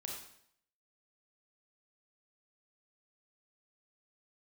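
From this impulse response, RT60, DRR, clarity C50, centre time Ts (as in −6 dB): 0.70 s, −1.0 dB, 2.5 dB, 45 ms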